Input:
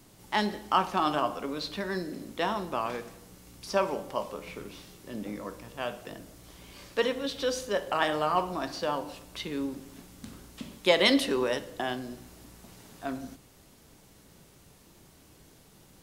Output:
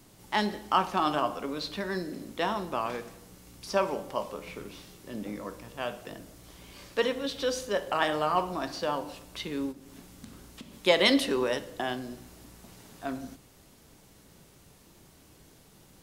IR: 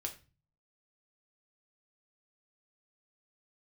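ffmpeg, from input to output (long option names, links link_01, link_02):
-filter_complex "[0:a]asplit=3[link_01][link_02][link_03];[link_01]afade=type=out:start_time=9.71:duration=0.02[link_04];[link_02]acompressor=threshold=-42dB:ratio=6,afade=type=in:start_time=9.71:duration=0.02,afade=type=out:start_time=10.73:duration=0.02[link_05];[link_03]afade=type=in:start_time=10.73:duration=0.02[link_06];[link_04][link_05][link_06]amix=inputs=3:normalize=0"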